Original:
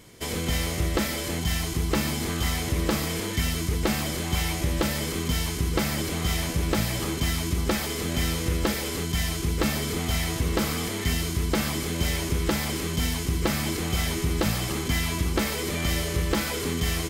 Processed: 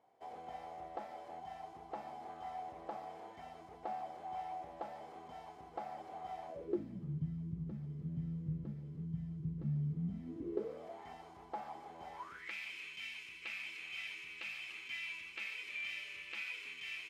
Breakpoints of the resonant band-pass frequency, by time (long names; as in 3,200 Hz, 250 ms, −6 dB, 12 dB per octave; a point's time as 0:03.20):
resonant band-pass, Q 11
0:06.47 760 Hz
0:07.08 150 Hz
0:09.97 150 Hz
0:11.00 800 Hz
0:12.13 800 Hz
0:12.54 2,500 Hz